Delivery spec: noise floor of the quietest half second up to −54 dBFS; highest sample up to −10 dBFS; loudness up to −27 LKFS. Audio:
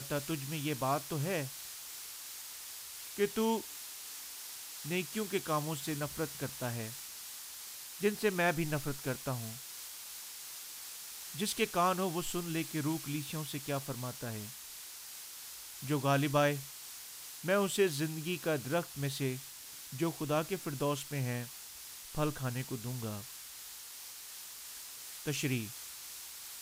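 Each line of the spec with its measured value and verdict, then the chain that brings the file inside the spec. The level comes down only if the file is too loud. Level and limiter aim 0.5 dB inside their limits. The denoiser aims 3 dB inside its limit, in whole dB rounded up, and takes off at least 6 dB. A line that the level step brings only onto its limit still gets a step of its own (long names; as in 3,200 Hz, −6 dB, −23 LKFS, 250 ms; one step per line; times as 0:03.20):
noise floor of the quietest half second −49 dBFS: out of spec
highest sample −16.0 dBFS: in spec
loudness −36.5 LKFS: in spec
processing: broadband denoise 8 dB, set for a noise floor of −49 dBFS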